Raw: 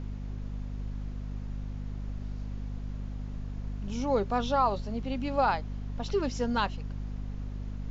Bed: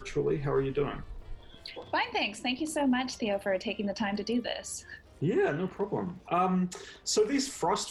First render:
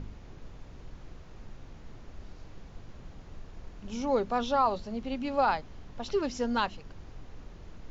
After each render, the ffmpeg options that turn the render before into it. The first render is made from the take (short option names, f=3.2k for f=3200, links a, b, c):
-af "bandreject=f=50:t=h:w=4,bandreject=f=100:t=h:w=4,bandreject=f=150:t=h:w=4,bandreject=f=200:t=h:w=4,bandreject=f=250:t=h:w=4"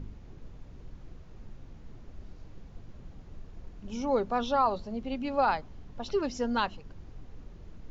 -af "afftdn=nr=6:nf=-49"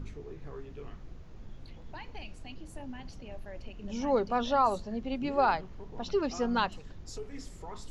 -filter_complex "[1:a]volume=-17dB[a];[0:a][a]amix=inputs=2:normalize=0"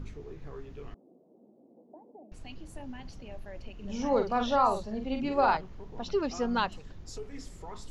-filter_complex "[0:a]asettb=1/sr,asplit=3[a][b][c];[a]atrim=end=0.944[d];[b]atrim=start=0.94:end=2.32,asetpts=PTS-STARTPTS,afade=t=in:d=0.004:c=qsin,afade=t=out:st=1.376:d=0.004:c=qsin,asuperpass=centerf=400:order=8:qfactor=0.78[e];[c]atrim=start=2.316[f];[d][e]acrossfade=d=0.004:c1=hsin:c2=qsin[g];[g][f]acrossfade=d=0.004:c1=qsin:c2=hsin,asettb=1/sr,asplit=3[h][i][j];[h]atrim=end=3.744[k];[i]atrim=start=3.74:end=5.57,asetpts=PTS-STARTPTS,afade=t=in:d=0.004:c=qsin,afade=t=out:st=1.826:d=0.004:c=qsin,asplit=2[l][m];[m]adelay=46,volume=-6dB[n];[l][n]amix=inputs=2:normalize=0,atrim=end_sample=80703[o];[j]atrim=start=5.566[p];[k][o]acrossfade=d=0.004:c1=hsin:c2=qsin[q];[q][p]acrossfade=d=0.004:c1=qsin:c2=hsin"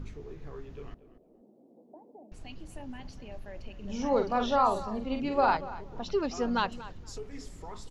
-filter_complex "[0:a]asplit=2[a][b];[b]adelay=236,lowpass=f=3.4k:p=1,volume=-16dB,asplit=2[c][d];[d]adelay=236,lowpass=f=3.4k:p=1,volume=0.17[e];[a][c][e]amix=inputs=3:normalize=0"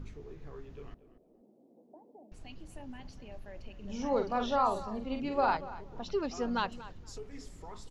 -af "volume=-3.5dB"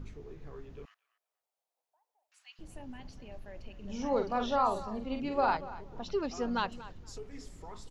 -filter_complex "[0:a]asettb=1/sr,asplit=3[a][b][c];[a]atrim=end=0.854[d];[b]atrim=start=0.85:end=2.59,asetpts=PTS-STARTPTS,afade=t=in:d=0.004:c=qsin,afade=t=out:st=1.736:d=0.004:c=qsin,highpass=f=1.3k:w=0.5412,highpass=f=1.3k:w=1.3066[e];[c]atrim=start=2.586[f];[d][e]acrossfade=d=0.004:c1=hsin:c2=qsin[g];[g][f]acrossfade=d=0.004:c1=qsin:c2=hsin"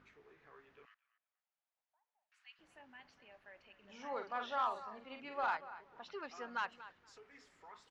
-af "bandpass=f=1.7k:t=q:w=1.4:csg=0,asoftclip=type=tanh:threshold=-26dB"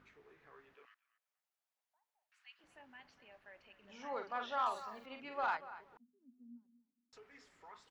-filter_complex "[0:a]asettb=1/sr,asplit=3[a][b][c];[a]atrim=end=0.744[d];[b]atrim=start=0.74:end=2.64,asetpts=PTS-STARTPTS,afade=t=in:d=0.004:c=qsin,afade=t=out:st=1.896:d=0.004:c=qsin,highpass=340[e];[c]atrim=start=2.636[f];[d][e]acrossfade=d=0.004:c1=hsin:c2=qsin[g];[g][f]acrossfade=d=0.004:c1=qsin:c2=hsin,asettb=1/sr,asplit=3[h][i][j];[h]atrim=end=4.664[k];[i]atrim=start=4.66:end=5.06,asetpts=PTS-STARTPTS,afade=t=in:d=0.004:c=qsin,afade=t=out:st=0.396:d=0.004:c=qsin,aemphasis=mode=production:type=75kf[l];[j]atrim=start=5.056[m];[k][l]acrossfade=d=0.004:c1=hsin:c2=qsin[n];[n][m]acrossfade=d=0.004:c1=qsin:c2=hsin,asettb=1/sr,asplit=3[o][p][q];[o]atrim=end=5.974[r];[p]atrim=start=5.97:end=7.13,asetpts=PTS-STARTPTS,afade=t=in:d=0.004:c=qsin,afade=t=out:st=1.156:d=0.004:c=qsin,asuperpass=centerf=240:order=4:qfactor=6.1[s];[q]atrim=start=7.126[t];[r][s]acrossfade=d=0.004:c1=hsin:c2=qsin[u];[u][t]acrossfade=d=0.004:c1=qsin:c2=hsin"